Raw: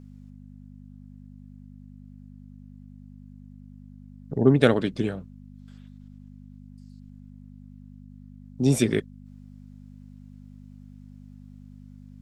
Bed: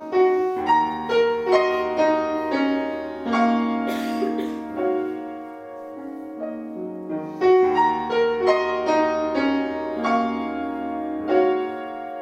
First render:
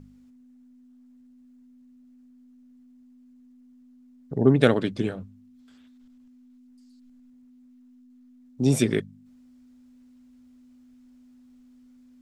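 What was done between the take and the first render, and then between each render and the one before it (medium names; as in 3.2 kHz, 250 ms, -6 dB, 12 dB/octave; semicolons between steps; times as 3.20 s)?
de-hum 50 Hz, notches 4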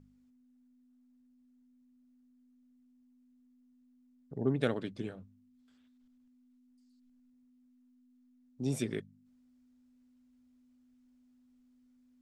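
trim -12.5 dB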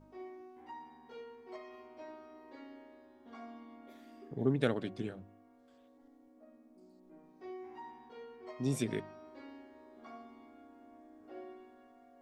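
add bed -30.5 dB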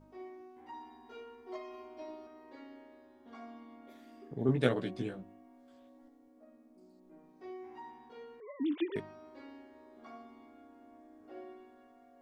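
0.73–2.27 s: comb 2.9 ms, depth 82%; 4.47–6.09 s: doubling 16 ms -2.5 dB; 8.40–8.96 s: formants replaced by sine waves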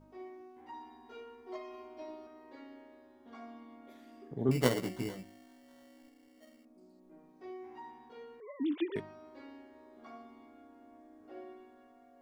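4.51–6.65 s: sample-rate reducer 2.5 kHz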